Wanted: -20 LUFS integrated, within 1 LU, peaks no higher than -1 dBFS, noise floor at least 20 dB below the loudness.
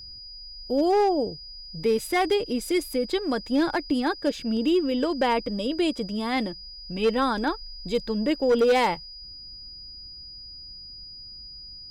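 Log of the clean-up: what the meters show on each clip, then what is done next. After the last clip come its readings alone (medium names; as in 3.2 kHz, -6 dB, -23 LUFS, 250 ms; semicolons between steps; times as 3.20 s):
clipped samples 0.7%; clipping level -15.5 dBFS; steady tone 4.9 kHz; tone level -40 dBFS; loudness -25.0 LUFS; peak level -15.5 dBFS; loudness target -20.0 LUFS
-> clip repair -15.5 dBFS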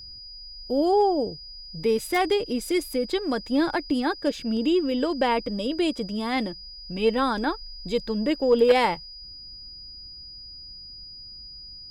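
clipped samples 0.0%; steady tone 4.9 kHz; tone level -40 dBFS
-> band-stop 4.9 kHz, Q 30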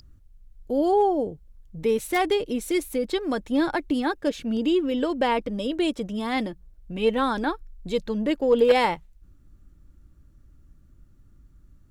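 steady tone not found; loudness -25.0 LUFS; peak level -7.5 dBFS; loudness target -20.0 LUFS
-> trim +5 dB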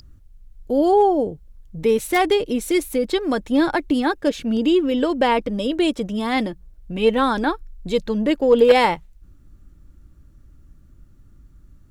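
loudness -20.0 LUFS; peak level -2.5 dBFS; noise floor -50 dBFS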